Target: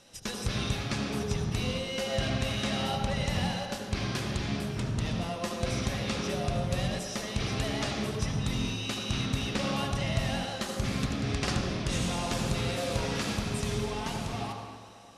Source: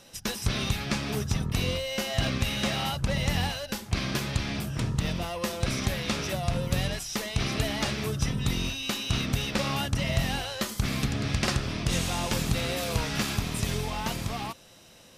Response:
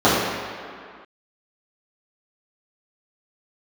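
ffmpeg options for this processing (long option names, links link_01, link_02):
-filter_complex "[0:a]lowpass=frequency=11000:width=0.5412,lowpass=frequency=11000:width=1.3066,asplit=2[link_01][link_02];[1:a]atrim=start_sample=2205,highshelf=frequency=4800:gain=9.5,adelay=73[link_03];[link_02][link_03]afir=irnorm=-1:irlink=0,volume=-28.5dB[link_04];[link_01][link_04]amix=inputs=2:normalize=0,volume=-4.5dB"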